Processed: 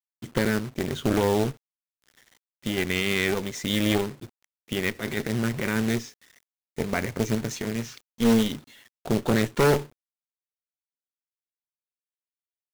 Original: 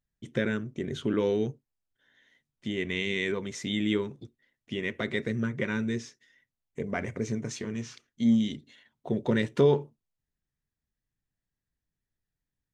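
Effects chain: 4.95–5.76 transient shaper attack -11 dB, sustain +3 dB; added harmonics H 3 -23 dB, 5 -17 dB, 6 -11 dB, 8 -29 dB, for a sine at -11 dBFS; companded quantiser 4-bit

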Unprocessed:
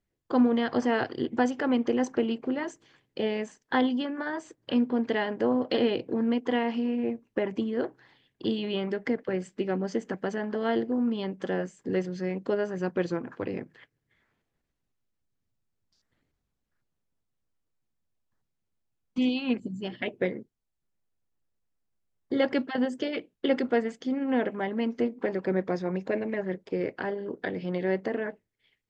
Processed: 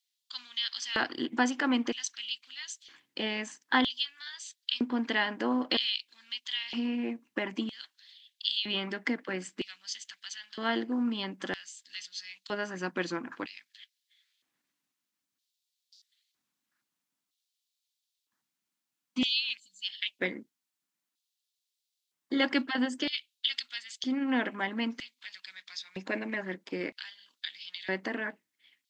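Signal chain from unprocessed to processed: EQ curve 200 Hz 0 dB, 290 Hz -4 dB, 410 Hz -23 dB, 1000 Hz -3 dB, 3800 Hz +3 dB; LFO high-pass square 0.52 Hz 390–3700 Hz; gain +4 dB

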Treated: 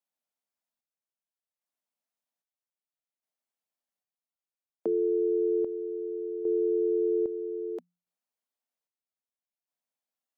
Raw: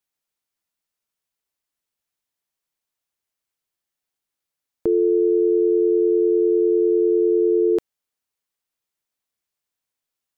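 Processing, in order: rippled Chebyshev high-pass 170 Hz, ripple 9 dB; chopper 0.62 Hz, depth 60%, duty 50%; gain -1 dB

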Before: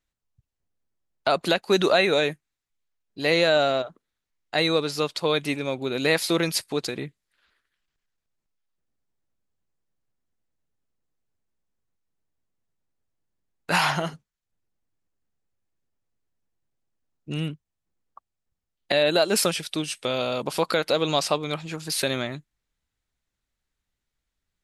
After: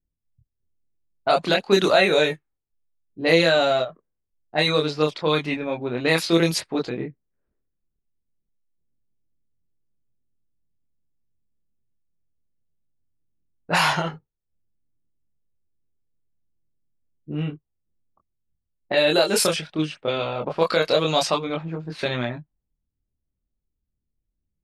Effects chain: chorus voices 2, 0.3 Hz, delay 25 ms, depth 1.3 ms; low-pass opened by the level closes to 330 Hz, open at -21 dBFS; gain +5.5 dB

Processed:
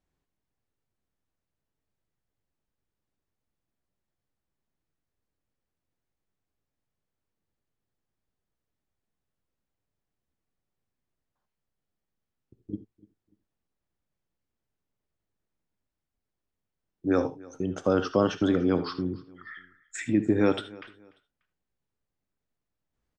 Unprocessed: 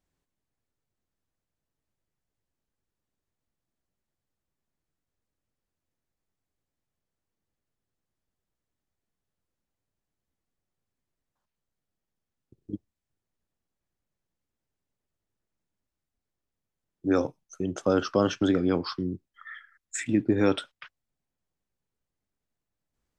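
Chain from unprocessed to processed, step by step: LPF 3800 Hz 6 dB/oct; on a send: feedback echo 0.294 s, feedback 31%, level -22.5 dB; on the sum: non-linear reverb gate 0.1 s rising, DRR 11.5 dB

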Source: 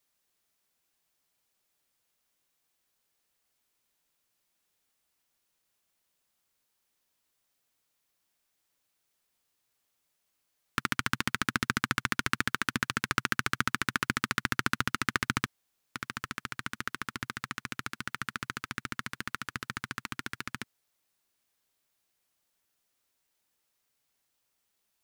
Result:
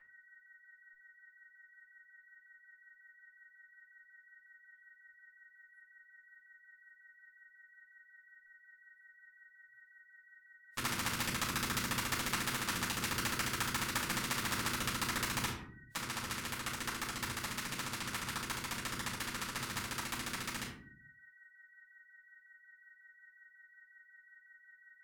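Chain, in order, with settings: spectral noise reduction 28 dB; whine 1900 Hz -62 dBFS; rotary speaker horn 5.5 Hz; harmoniser -4 st -7 dB; reverb RT60 0.40 s, pre-delay 3 ms, DRR -7.5 dB; spectral compressor 2:1; gain -8.5 dB

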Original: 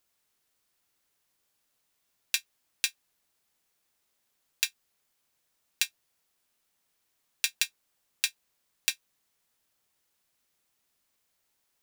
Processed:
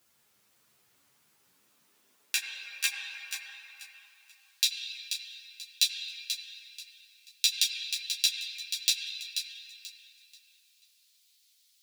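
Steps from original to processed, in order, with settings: dynamic EQ 1700 Hz, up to +3 dB, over -51 dBFS, Q 4.3; in parallel at +1 dB: negative-ratio compressor -31 dBFS, ratio -0.5; on the sum: high-pass sweep 120 Hz -> 3900 Hz, 1.24–4.39; thinning echo 0.485 s, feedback 28%, level -8 dB; on a send at -1.5 dB: reverb RT60 3.4 s, pre-delay 75 ms; on the sum: ensemble effect

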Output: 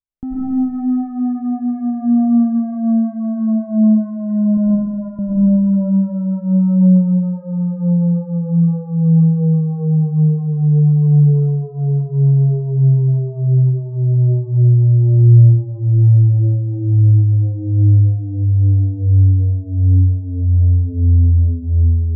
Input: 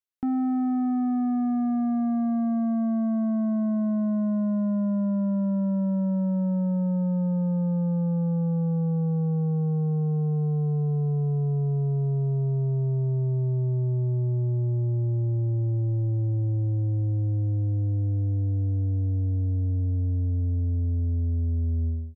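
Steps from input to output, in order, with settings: 4.57–5.19 HPF 600 Hz 12 dB/oct; tilt -4.5 dB/oct; digital reverb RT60 1.5 s, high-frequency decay 0.9×, pre-delay 70 ms, DRR -7 dB; gain -7.5 dB

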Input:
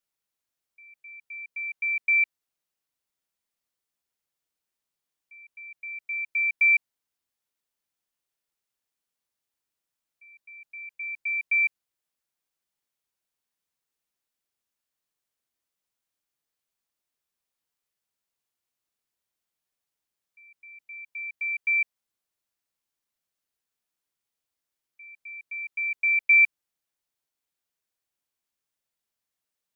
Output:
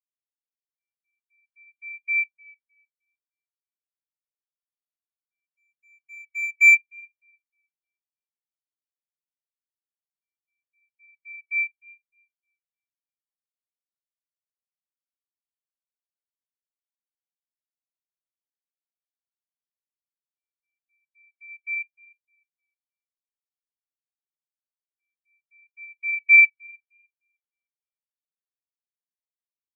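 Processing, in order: 5.42–6.75 half-waves squared off; tape echo 0.306 s, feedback 73%, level -5 dB, low-pass 2100 Hz; spectral expander 2.5:1; gain +5 dB

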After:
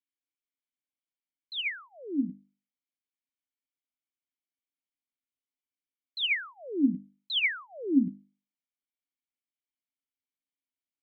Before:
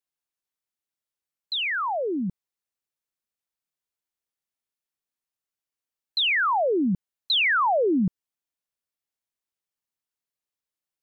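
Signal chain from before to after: vowel filter i; notches 50/100/150/200/250/300 Hz; gain +5 dB

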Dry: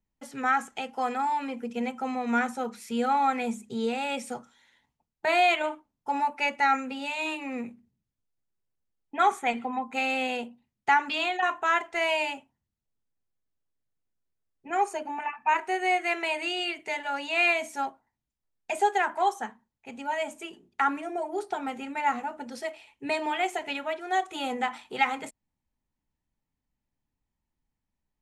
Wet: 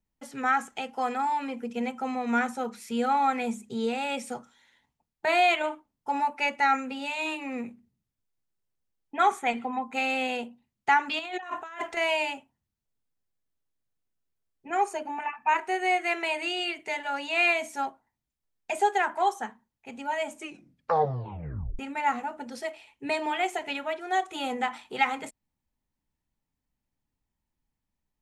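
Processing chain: 11.19–11.97 negative-ratio compressor -37 dBFS, ratio -1; 20.36 tape stop 1.43 s

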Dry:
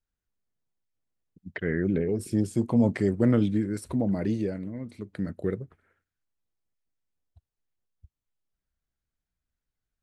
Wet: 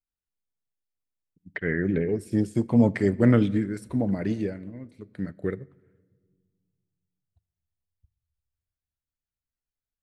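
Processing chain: dynamic EQ 1900 Hz, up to +5 dB, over -51 dBFS, Q 1.3; shoebox room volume 2100 m³, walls mixed, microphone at 0.32 m; upward expander 1.5:1, over -45 dBFS; gain +4 dB

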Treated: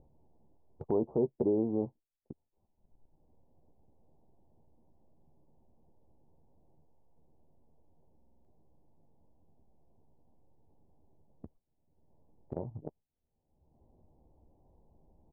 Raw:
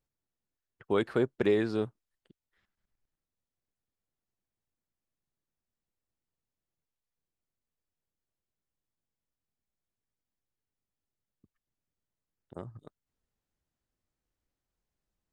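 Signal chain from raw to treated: steep low-pass 940 Hz 72 dB/oct; gate with hold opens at -52 dBFS; in parallel at +1.5 dB: limiter -24 dBFS, peak gain reduction 8 dB; on the sum: doubler 13 ms -9 dB; upward compressor, threshold -24 dBFS; stuck buffer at 8.17, samples 2048, times 5; gain -6 dB

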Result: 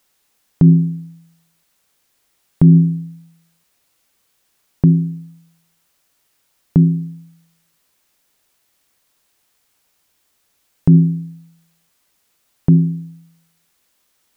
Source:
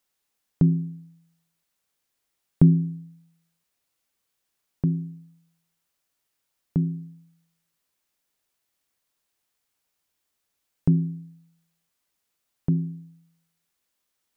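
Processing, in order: maximiser +14.5 dB; gain -1 dB

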